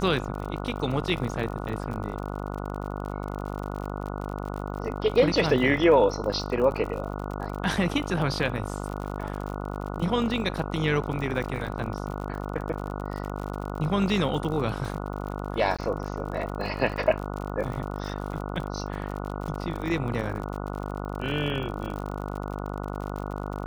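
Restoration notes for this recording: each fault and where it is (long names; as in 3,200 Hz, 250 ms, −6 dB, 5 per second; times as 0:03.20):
mains buzz 50 Hz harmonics 29 −33 dBFS
surface crackle 53 per second −33 dBFS
0:15.77–0:15.79: drop-out 16 ms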